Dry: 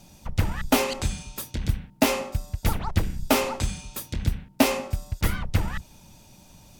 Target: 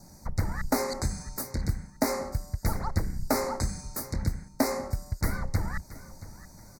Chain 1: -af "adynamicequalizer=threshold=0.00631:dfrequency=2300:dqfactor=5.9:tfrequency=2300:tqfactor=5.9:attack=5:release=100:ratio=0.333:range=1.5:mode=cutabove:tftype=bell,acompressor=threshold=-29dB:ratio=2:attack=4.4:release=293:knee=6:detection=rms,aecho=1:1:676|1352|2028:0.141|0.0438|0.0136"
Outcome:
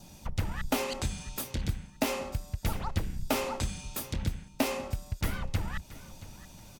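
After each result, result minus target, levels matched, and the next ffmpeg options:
4,000 Hz band +4.5 dB; downward compressor: peak gain reduction +3.5 dB
-af "adynamicequalizer=threshold=0.00631:dfrequency=2300:dqfactor=5.9:tfrequency=2300:tqfactor=5.9:attack=5:release=100:ratio=0.333:range=1.5:mode=cutabove:tftype=bell,asuperstop=centerf=3000:order=8:qfactor=1.5,acompressor=threshold=-29dB:ratio=2:attack=4.4:release=293:knee=6:detection=rms,aecho=1:1:676|1352|2028:0.141|0.0438|0.0136"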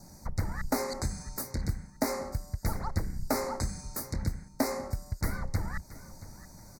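downward compressor: peak gain reduction +3 dB
-af "adynamicequalizer=threshold=0.00631:dfrequency=2300:dqfactor=5.9:tfrequency=2300:tqfactor=5.9:attack=5:release=100:ratio=0.333:range=1.5:mode=cutabove:tftype=bell,asuperstop=centerf=3000:order=8:qfactor=1.5,acompressor=threshold=-22.5dB:ratio=2:attack=4.4:release=293:knee=6:detection=rms,aecho=1:1:676|1352|2028:0.141|0.0438|0.0136"

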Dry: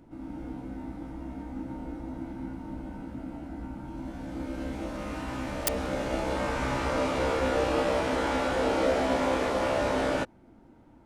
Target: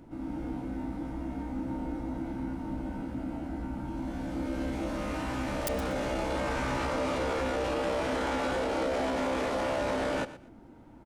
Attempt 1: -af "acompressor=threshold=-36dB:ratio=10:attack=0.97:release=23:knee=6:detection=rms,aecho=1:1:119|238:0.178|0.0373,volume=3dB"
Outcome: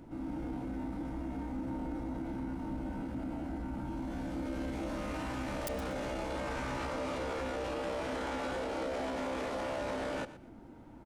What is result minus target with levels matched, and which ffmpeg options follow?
downward compressor: peak gain reduction +6.5 dB
-af "acompressor=threshold=-29dB:ratio=10:attack=0.97:release=23:knee=6:detection=rms,aecho=1:1:119|238:0.178|0.0373,volume=3dB"

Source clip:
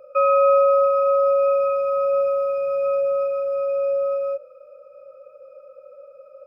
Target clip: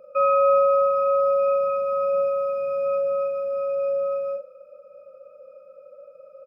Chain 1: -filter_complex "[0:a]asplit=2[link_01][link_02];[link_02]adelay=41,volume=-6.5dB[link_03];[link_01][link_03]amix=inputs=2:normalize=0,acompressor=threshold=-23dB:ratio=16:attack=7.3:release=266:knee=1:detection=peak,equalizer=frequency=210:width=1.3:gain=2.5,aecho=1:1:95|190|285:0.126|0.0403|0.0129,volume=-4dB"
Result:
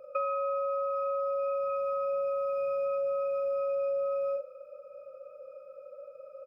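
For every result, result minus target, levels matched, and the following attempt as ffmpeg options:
downward compressor: peak gain reduction +13 dB; 250 Hz band −4.5 dB
-filter_complex "[0:a]equalizer=frequency=210:width=1.3:gain=2.5,asplit=2[link_01][link_02];[link_02]adelay=41,volume=-6.5dB[link_03];[link_01][link_03]amix=inputs=2:normalize=0,aecho=1:1:95|190|285:0.126|0.0403|0.0129,volume=-4dB"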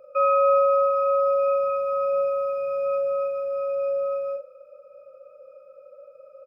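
250 Hz band −6.0 dB
-filter_complex "[0:a]equalizer=frequency=210:width=1.3:gain=11.5,asplit=2[link_01][link_02];[link_02]adelay=41,volume=-6.5dB[link_03];[link_01][link_03]amix=inputs=2:normalize=0,aecho=1:1:95|190|285:0.126|0.0403|0.0129,volume=-4dB"

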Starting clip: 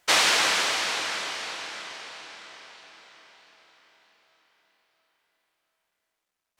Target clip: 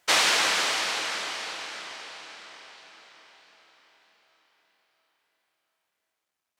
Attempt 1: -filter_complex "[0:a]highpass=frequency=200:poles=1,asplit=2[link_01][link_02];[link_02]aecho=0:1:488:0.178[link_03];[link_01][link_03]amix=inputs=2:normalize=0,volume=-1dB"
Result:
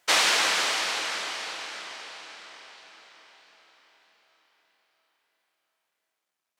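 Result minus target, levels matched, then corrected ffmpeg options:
125 Hz band −3.5 dB
-filter_complex "[0:a]highpass=frequency=80:poles=1,asplit=2[link_01][link_02];[link_02]aecho=0:1:488:0.178[link_03];[link_01][link_03]amix=inputs=2:normalize=0,volume=-1dB"

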